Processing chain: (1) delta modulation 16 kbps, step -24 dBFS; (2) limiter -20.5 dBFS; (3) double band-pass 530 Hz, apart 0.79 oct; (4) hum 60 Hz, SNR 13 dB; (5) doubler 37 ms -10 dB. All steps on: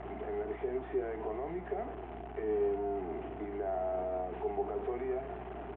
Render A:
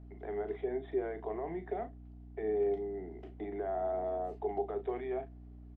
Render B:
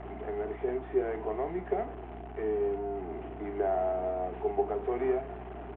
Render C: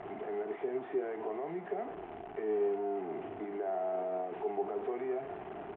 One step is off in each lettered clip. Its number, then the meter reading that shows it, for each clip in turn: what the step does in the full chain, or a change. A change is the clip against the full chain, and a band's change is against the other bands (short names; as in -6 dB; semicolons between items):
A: 1, momentary loudness spread change +4 LU; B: 2, mean gain reduction 2.0 dB; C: 4, 125 Hz band -8.0 dB